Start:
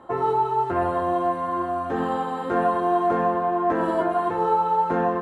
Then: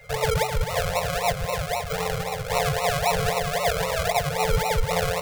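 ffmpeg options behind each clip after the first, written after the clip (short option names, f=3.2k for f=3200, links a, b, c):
-af "acrusher=samples=38:mix=1:aa=0.000001:lfo=1:lforange=22.8:lforate=3.8,afftfilt=real='re*(1-between(b*sr/4096,180,430))':imag='im*(1-between(b*sr/4096,180,430))':win_size=4096:overlap=0.75,aeval=exprs='val(0)+0.00355*sin(2*PI*2100*n/s)':c=same"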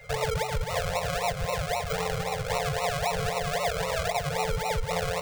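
-af "equalizer=f=12k:w=5:g=-13.5,acompressor=threshold=-25dB:ratio=6"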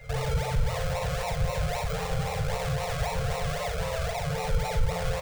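-af "aecho=1:1:38|53:0.422|0.501,alimiter=limit=-22.5dB:level=0:latency=1:release=16,lowshelf=f=160:g=11,volume=-2dB"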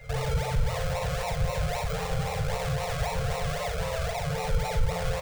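-af anull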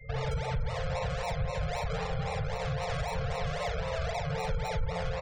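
-af "afftfilt=real='re*gte(hypot(re,im),0.01)':imag='im*gte(hypot(re,im),0.01)':win_size=1024:overlap=0.75,alimiter=limit=-22dB:level=0:latency=1:release=126,volume=-1.5dB"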